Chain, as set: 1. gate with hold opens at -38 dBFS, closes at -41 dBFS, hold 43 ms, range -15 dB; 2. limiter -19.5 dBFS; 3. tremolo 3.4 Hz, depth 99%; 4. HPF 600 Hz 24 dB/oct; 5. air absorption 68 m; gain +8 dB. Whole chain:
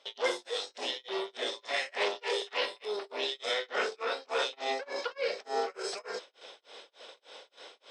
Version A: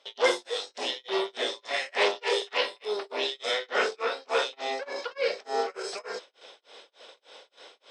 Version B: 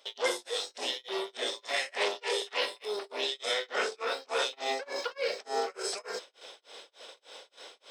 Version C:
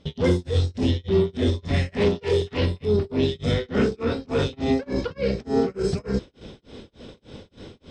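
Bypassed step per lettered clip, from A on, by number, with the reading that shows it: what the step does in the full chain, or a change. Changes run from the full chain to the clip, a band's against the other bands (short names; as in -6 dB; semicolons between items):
2, mean gain reduction 2.5 dB; 5, 8 kHz band +5.5 dB; 4, crest factor change -6.0 dB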